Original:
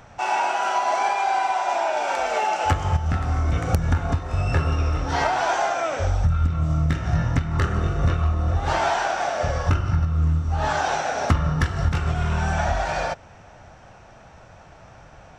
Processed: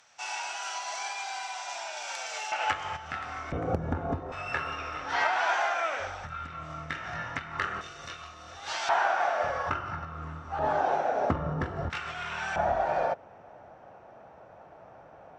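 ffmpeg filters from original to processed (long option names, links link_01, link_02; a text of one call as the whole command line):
ffmpeg -i in.wav -af "asetnsamples=nb_out_samples=441:pad=0,asendcmd='2.52 bandpass f 2200;3.52 bandpass f 440;4.32 bandpass f 1900;7.81 bandpass f 4700;8.89 bandpass f 1200;10.59 bandpass f 480;11.9 bandpass f 2400;12.56 bandpass f 560',bandpass=frequency=5800:width_type=q:width=0.91:csg=0" out.wav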